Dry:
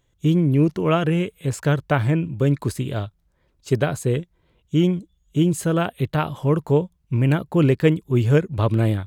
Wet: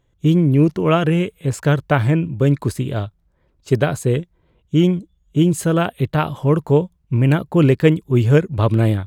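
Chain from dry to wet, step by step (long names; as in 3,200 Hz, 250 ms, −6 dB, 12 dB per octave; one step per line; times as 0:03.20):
one half of a high-frequency compander decoder only
level +3.5 dB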